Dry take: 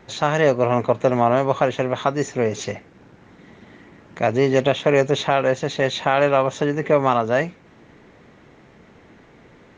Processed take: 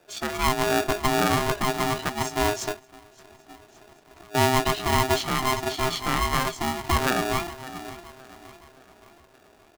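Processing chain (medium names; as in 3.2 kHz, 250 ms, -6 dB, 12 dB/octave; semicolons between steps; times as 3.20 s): tone controls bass +13 dB, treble +9 dB; on a send: feedback delay 569 ms, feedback 52%, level -9 dB; 2.72–4.35 s: on the sum: compression 16:1, threshold -28 dBFS, peak gain reduction 18.5 dB; spectral noise reduction 11 dB; polarity switched at an audio rate 520 Hz; trim -7 dB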